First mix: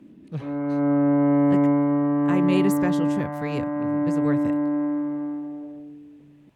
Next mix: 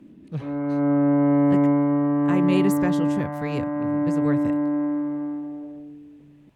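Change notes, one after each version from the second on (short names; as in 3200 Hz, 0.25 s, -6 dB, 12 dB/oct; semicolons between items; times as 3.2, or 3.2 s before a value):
master: add low shelf 71 Hz +6.5 dB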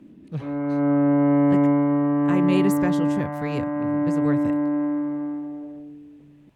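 background: remove air absorption 200 m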